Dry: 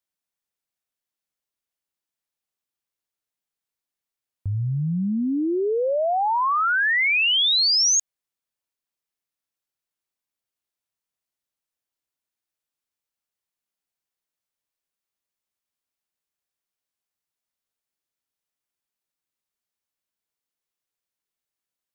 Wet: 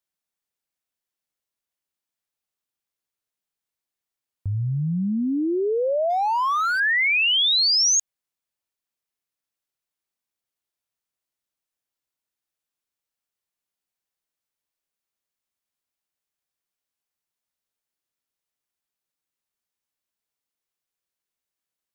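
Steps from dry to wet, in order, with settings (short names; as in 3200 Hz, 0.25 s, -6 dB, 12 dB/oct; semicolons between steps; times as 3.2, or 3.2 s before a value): 6.1–6.8 median filter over 15 samples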